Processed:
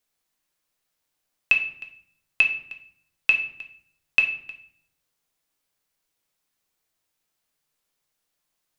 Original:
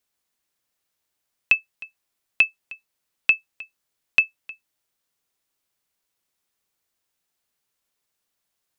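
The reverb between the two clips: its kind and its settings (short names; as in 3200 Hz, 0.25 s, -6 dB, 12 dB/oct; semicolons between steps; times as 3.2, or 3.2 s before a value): shoebox room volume 110 m³, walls mixed, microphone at 0.55 m; gain -1 dB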